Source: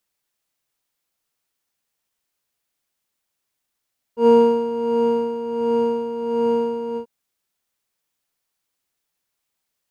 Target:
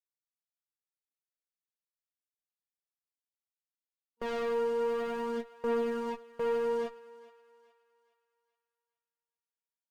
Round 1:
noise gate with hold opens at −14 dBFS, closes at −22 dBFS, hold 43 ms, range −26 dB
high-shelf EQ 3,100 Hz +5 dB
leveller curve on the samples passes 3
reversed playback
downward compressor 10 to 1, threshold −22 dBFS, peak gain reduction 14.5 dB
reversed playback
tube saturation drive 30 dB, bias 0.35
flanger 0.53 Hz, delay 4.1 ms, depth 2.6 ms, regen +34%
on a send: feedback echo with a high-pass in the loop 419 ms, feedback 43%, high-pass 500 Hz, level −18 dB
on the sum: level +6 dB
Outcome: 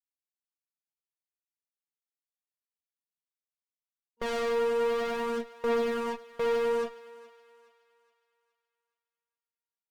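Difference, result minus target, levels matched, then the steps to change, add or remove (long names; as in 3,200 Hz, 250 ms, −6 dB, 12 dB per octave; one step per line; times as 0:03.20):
downward compressor: peak gain reduction −8 dB
change: downward compressor 10 to 1, threshold −31 dBFS, peak gain reduction 22.5 dB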